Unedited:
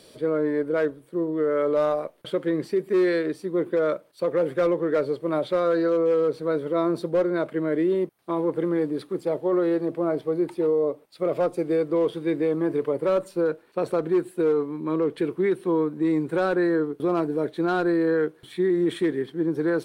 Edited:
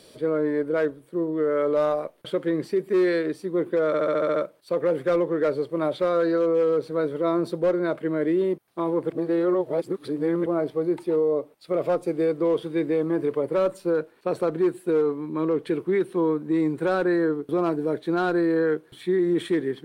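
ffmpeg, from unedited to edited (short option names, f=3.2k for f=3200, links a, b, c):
-filter_complex "[0:a]asplit=10[a][b][c][d][e][f][g][h][i][j];[a]atrim=end=3.942[k];[b]atrim=start=3.868:end=3.942[l];[c]atrim=start=3.868:end=3.942[m];[d]atrim=start=3.868:end=3.942[n];[e]atrim=start=3.868:end=3.942[o];[f]atrim=start=3.868:end=3.942[p];[g]atrim=start=3.868:end=3.942[q];[h]atrim=start=3.868:end=8.612[r];[i]atrim=start=8.608:end=9.972,asetpts=PTS-STARTPTS,areverse[s];[j]atrim=start=9.968[t];[k][l]acrossfade=d=0.004:c1=hsin:c2=hsin[u];[u][m]acrossfade=d=0.004:c1=hsin:c2=hsin[v];[v][n]acrossfade=d=0.004:c1=hsin:c2=hsin[w];[w][o]acrossfade=d=0.004:c1=hsin:c2=hsin[x];[x][p]acrossfade=d=0.004:c1=hsin:c2=hsin[y];[y][q]acrossfade=d=0.004:c1=hsin:c2=hsin[z];[z][r]acrossfade=d=0.004:c1=hsin:c2=hsin[aa];[aa][s]acrossfade=d=0.004:c1=hsin:c2=hsin[ab];[ab][t]acrossfade=d=0.004:c1=hsin:c2=hsin"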